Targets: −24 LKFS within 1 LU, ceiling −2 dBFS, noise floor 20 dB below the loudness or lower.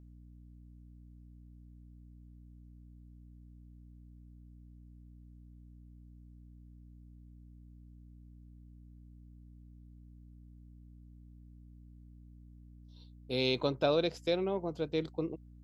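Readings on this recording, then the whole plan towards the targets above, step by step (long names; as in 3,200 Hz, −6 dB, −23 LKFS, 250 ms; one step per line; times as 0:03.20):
mains hum 60 Hz; hum harmonics up to 300 Hz; level of the hum −52 dBFS; integrated loudness −33.0 LKFS; sample peak −15.5 dBFS; target loudness −24.0 LKFS
→ mains-hum notches 60/120/180/240/300 Hz
level +9 dB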